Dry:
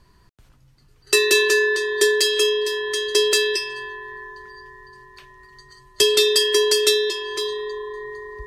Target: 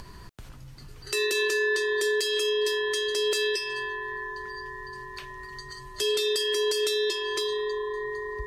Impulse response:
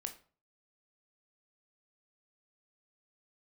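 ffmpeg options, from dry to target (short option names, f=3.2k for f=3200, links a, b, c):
-filter_complex "[0:a]asplit=2[a][b];[b]acompressor=mode=upward:threshold=-19dB:ratio=2.5,volume=-3dB[c];[a][c]amix=inputs=2:normalize=0,alimiter=limit=-10.5dB:level=0:latency=1:release=145,volume=-7dB"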